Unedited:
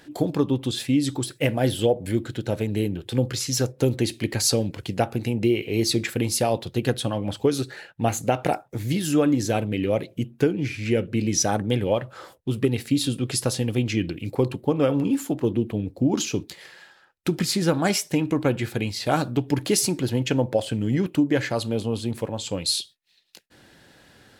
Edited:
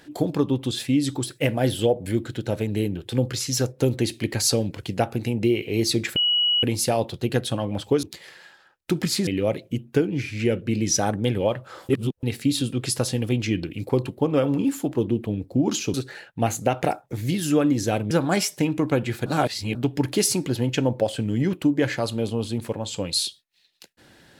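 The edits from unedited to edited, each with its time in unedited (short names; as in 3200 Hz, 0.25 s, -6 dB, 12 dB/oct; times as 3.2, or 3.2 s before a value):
6.16 add tone 2920 Hz -17.5 dBFS 0.47 s
7.56–9.73 swap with 16.4–17.64
12.35–12.69 reverse
18.79–19.28 reverse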